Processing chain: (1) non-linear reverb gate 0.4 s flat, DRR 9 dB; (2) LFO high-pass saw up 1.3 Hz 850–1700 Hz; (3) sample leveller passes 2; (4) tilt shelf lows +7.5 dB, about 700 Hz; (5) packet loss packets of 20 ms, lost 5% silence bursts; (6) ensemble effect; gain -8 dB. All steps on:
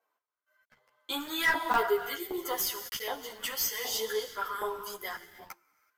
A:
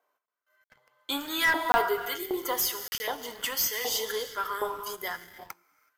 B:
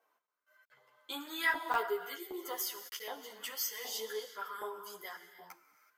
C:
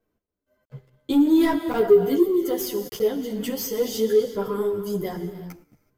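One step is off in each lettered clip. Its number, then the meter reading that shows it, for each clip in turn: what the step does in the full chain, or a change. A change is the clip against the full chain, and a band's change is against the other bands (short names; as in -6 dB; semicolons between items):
6, 500 Hz band -1.5 dB; 3, loudness change -6.0 LU; 2, 125 Hz band +22.5 dB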